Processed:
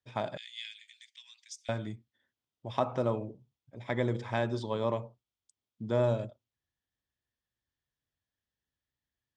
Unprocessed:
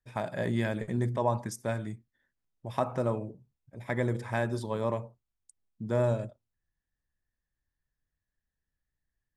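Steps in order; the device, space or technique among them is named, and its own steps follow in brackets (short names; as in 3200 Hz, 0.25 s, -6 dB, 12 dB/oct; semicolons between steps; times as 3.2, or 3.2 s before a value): car door speaker (speaker cabinet 91–6600 Hz, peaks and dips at 170 Hz -6 dB, 1700 Hz -4 dB, 3300 Hz +7 dB); 0.37–1.69 steep high-pass 2300 Hz 36 dB/oct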